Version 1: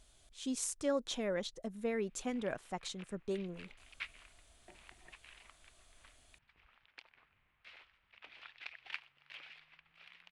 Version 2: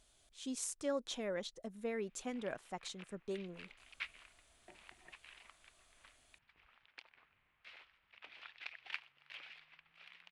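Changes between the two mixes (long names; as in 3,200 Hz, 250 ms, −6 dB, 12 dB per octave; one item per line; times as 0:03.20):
speech −3.0 dB
master: add low-shelf EQ 140 Hz −6.5 dB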